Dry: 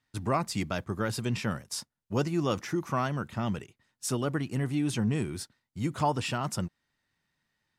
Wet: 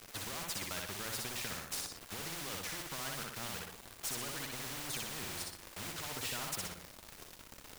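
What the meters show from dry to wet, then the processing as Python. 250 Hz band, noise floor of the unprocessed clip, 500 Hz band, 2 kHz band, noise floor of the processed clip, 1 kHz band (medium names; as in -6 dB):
-18.5 dB, -83 dBFS, -14.5 dB, -4.0 dB, -55 dBFS, -12.5 dB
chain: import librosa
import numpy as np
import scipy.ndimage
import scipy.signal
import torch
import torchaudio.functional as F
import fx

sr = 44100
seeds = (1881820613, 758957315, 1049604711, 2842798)

y = fx.bin_expand(x, sr, power=2.0)
y = fx.lowpass(y, sr, hz=1500.0, slope=6)
y = fx.over_compress(y, sr, threshold_db=-39.0, ratio=-1.0)
y = fx.dmg_noise_colour(y, sr, seeds[0], colour='pink', level_db=-60.0)
y = np.sign(y) * np.maximum(np.abs(y) - 10.0 ** (-56.0 / 20.0), 0.0)
y = fx.echo_feedback(y, sr, ms=61, feedback_pct=26, wet_db=-5)
y = fx.spectral_comp(y, sr, ratio=4.0)
y = y * 10.0 ** (1.0 / 20.0)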